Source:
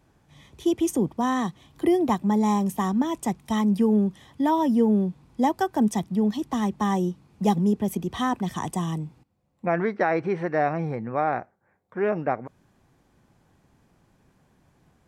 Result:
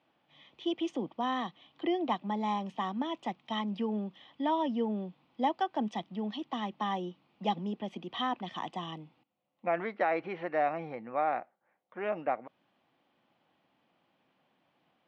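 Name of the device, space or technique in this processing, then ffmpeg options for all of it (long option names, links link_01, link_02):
phone earpiece: -af "highpass=360,equalizer=frequency=410:width_type=q:width=4:gain=-9,equalizer=frequency=980:width_type=q:width=4:gain=-3,equalizer=frequency=1600:width_type=q:width=4:gain=-6,equalizer=frequency=3000:width_type=q:width=4:gain=6,lowpass=frequency=3900:width=0.5412,lowpass=frequency=3900:width=1.3066,volume=-3.5dB"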